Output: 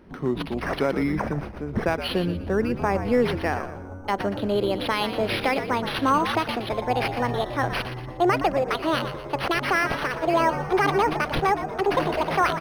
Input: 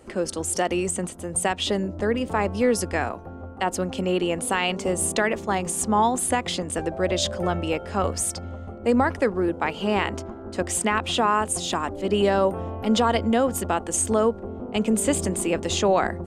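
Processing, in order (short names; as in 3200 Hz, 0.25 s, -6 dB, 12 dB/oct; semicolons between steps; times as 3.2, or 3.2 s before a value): speed glide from 69% -> 189%; frequency-shifting echo 0.118 s, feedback 38%, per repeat -85 Hz, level -10 dB; decimation joined by straight lines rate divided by 6×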